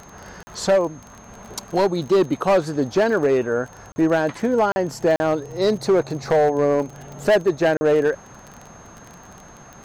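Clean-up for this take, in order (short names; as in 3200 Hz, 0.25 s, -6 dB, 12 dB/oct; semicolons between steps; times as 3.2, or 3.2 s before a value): clip repair -12 dBFS; de-click; notch 6400 Hz, Q 30; interpolate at 0.43/3.92/4.72/5.16/7.77, 40 ms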